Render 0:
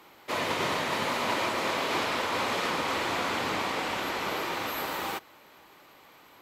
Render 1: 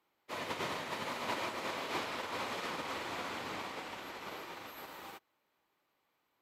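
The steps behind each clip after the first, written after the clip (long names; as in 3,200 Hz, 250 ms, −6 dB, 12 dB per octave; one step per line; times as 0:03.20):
expander for the loud parts 2.5 to 1, over −39 dBFS
level −6.5 dB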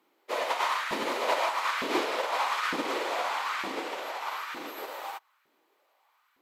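auto-filter high-pass saw up 1.1 Hz 240–1,500 Hz
level +7 dB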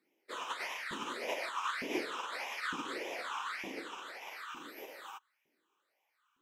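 all-pass phaser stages 8, 1.7 Hz, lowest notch 580–1,300 Hz
level −5 dB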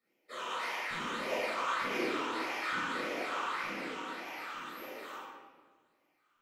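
convolution reverb RT60 1.5 s, pre-delay 14 ms, DRR −8 dB
level −7.5 dB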